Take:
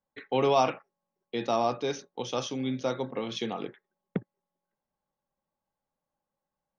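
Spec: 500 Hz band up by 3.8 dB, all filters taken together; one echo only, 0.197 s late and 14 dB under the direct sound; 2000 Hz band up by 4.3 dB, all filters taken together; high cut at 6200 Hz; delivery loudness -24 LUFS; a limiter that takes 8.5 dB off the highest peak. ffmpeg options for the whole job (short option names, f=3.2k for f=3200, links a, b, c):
-af "lowpass=6.2k,equalizer=f=500:t=o:g=4.5,equalizer=f=2k:t=o:g=5.5,alimiter=limit=-17.5dB:level=0:latency=1,aecho=1:1:197:0.2,volume=6.5dB"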